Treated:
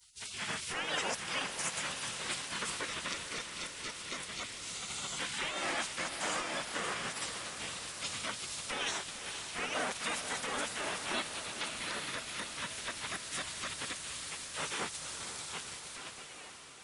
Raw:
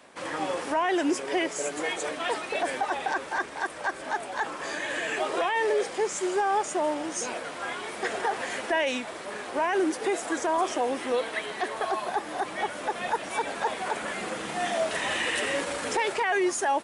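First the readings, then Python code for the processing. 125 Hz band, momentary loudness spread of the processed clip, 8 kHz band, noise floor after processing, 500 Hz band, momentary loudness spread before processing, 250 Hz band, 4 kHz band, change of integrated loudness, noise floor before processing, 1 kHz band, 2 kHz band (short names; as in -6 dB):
-1.0 dB, 6 LU, -1.5 dB, -49 dBFS, -16.5 dB, 7 LU, -15.0 dB, -1.0 dB, -8.0 dB, -39 dBFS, -13.5 dB, -8.0 dB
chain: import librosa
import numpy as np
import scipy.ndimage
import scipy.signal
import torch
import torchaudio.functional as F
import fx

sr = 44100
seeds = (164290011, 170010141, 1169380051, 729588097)

y = fx.fade_out_tail(x, sr, length_s=3.25)
y = fx.spec_gate(y, sr, threshold_db=-20, keep='weak')
y = fx.echo_diffused(y, sr, ms=490, feedback_pct=67, wet_db=-9)
y = y * librosa.db_to_amplitude(3.5)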